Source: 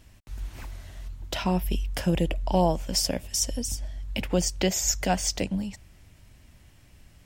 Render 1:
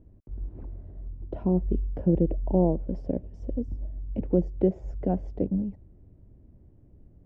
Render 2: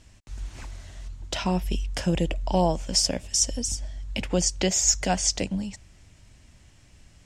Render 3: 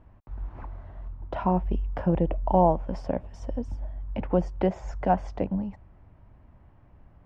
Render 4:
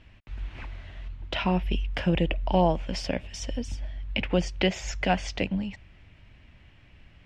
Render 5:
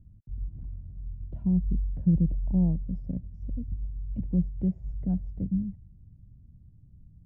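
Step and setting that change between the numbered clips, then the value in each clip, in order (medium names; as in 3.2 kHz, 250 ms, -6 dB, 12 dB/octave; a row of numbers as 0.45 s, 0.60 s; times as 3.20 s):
resonant low-pass, frequency: 400 Hz, 7.4 kHz, 1 kHz, 2.7 kHz, 160 Hz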